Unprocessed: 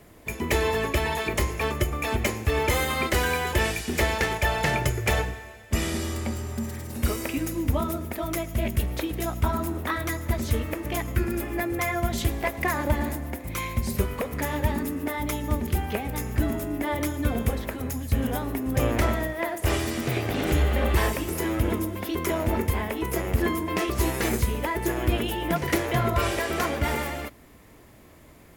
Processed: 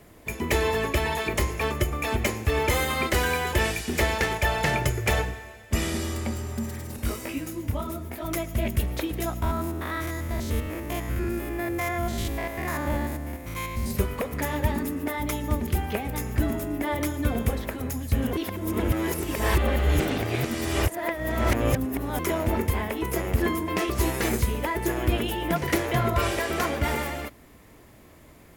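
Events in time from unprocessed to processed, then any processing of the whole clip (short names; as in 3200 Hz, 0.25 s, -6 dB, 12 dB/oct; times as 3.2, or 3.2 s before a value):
6.96–8.25 detuned doubles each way 23 cents
9.42–13.91 stepped spectrum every 0.1 s
18.33–22.19 reverse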